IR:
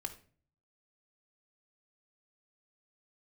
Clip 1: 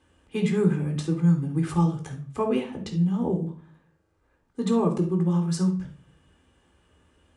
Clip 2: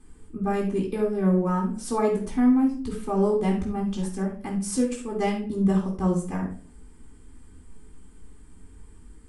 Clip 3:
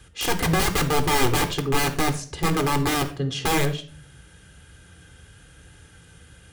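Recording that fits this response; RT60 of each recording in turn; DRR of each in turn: 3; 0.45 s, 0.45 s, 0.45 s; 0.0 dB, -5.5 dB, 6.0 dB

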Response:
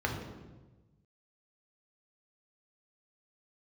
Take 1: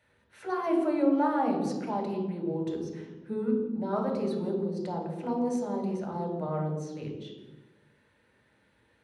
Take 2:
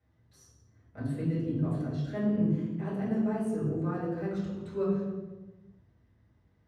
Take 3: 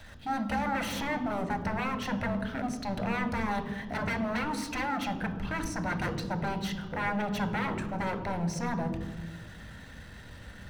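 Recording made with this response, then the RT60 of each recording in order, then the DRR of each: 1; 1.2 s, 1.2 s, 1.2 s; 0.0 dB, -10.0 dB, 6.5 dB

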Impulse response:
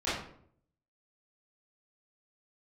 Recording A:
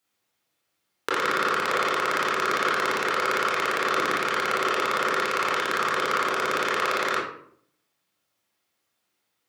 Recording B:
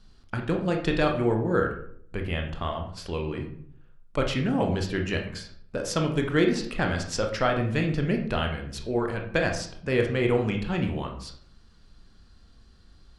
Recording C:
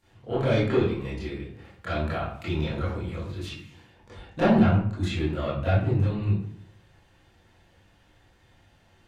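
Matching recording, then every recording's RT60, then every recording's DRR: C; 0.65 s, 0.65 s, 0.65 s; -6.5 dB, 2.5 dB, -13.5 dB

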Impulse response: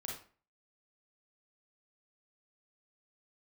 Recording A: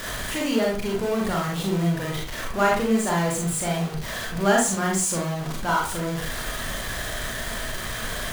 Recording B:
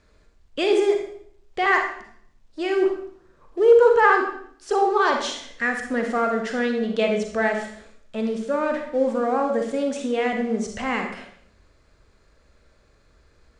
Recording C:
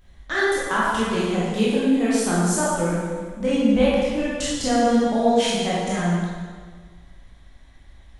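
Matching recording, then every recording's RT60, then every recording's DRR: A; 0.40 s, 0.65 s, 1.6 s; -2.5 dB, 3.0 dB, -8.5 dB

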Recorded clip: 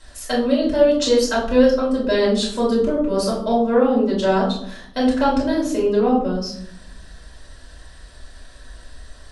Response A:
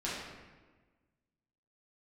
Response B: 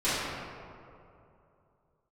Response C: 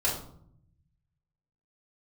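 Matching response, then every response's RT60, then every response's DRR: C; 1.4 s, 2.7 s, 0.65 s; -8.5 dB, -15.0 dB, -7.0 dB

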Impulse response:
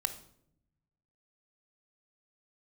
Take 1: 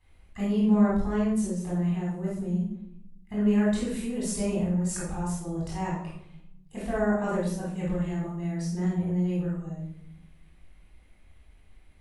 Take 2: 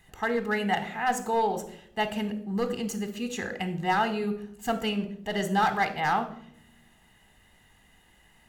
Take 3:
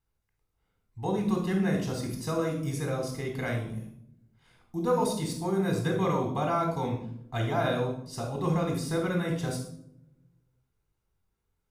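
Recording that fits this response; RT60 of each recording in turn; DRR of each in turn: 2; 0.70 s, 0.70 s, 0.70 s; -7.5 dB, 9.0 dB, 0.5 dB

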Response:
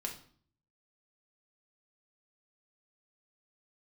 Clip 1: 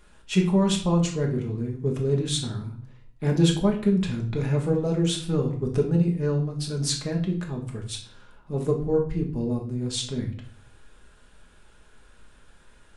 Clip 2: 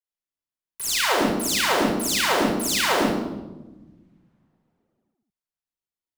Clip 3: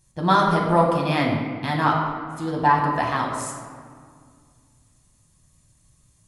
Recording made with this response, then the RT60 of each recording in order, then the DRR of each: 1; 0.50 s, 1.1 s, 2.0 s; 0.5 dB, -5.5 dB, -1.5 dB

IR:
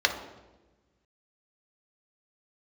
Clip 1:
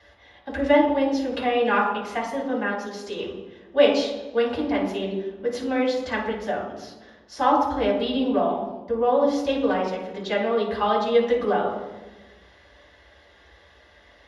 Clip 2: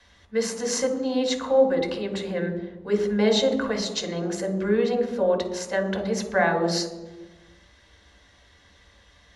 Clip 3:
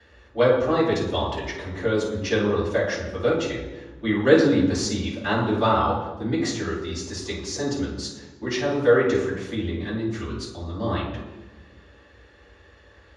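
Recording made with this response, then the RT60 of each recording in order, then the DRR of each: 2; 1.2 s, 1.2 s, 1.2 s; -6.0 dB, 3.5 dB, -16.0 dB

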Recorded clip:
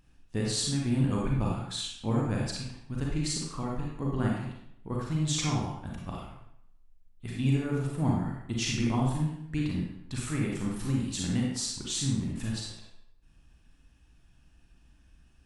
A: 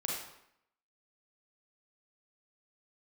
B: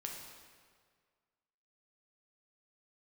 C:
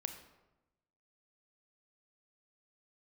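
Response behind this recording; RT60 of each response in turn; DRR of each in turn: A; 0.75 s, 1.8 s, 1.0 s; -3.0 dB, -0.5 dB, 6.5 dB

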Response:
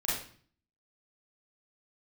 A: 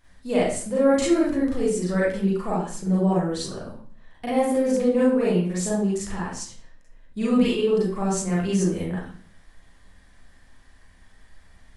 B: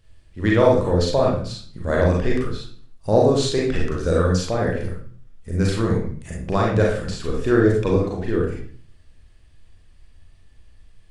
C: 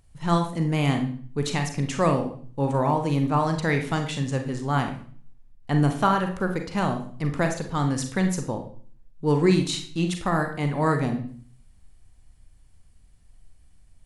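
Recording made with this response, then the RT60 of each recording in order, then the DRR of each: A; 0.45 s, 0.45 s, 0.45 s; -8.0 dB, -3.5 dB, 4.5 dB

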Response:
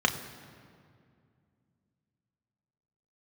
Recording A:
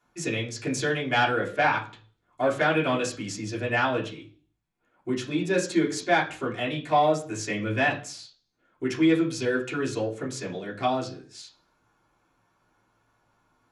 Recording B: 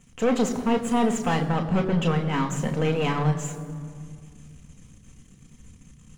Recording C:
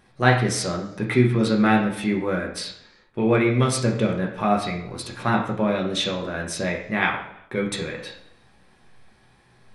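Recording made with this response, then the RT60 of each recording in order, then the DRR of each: B; 0.45 s, 2.3 s, no single decay rate; -6.0 dB, 4.0 dB, -0.5 dB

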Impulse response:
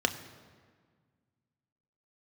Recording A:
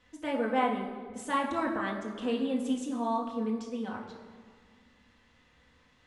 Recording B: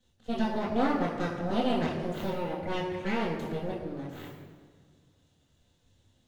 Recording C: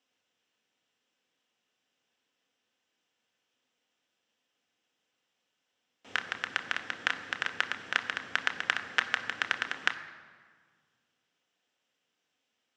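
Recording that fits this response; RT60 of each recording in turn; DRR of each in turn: C; 1.7 s, 1.7 s, 1.7 s; -2.5 dB, -11.0 dB, 7.0 dB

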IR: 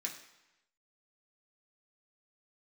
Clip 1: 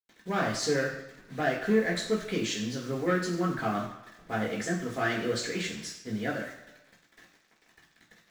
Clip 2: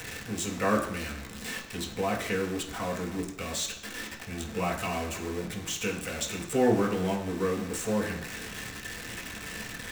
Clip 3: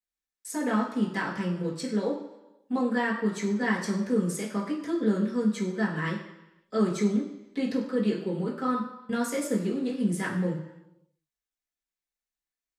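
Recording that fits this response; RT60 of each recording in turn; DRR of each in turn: 2; 0.95 s, 0.95 s, 0.95 s; -15.0 dB, -2.5 dB, -9.0 dB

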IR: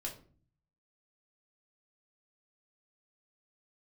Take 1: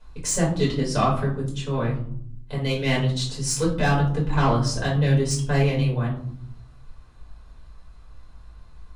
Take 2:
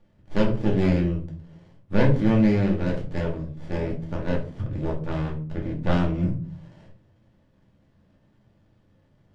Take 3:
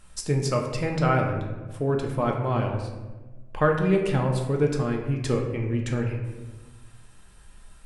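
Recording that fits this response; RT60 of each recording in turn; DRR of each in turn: 2; 0.70 s, 0.45 s, 1.3 s; -6.0 dB, -1.5 dB, 1.0 dB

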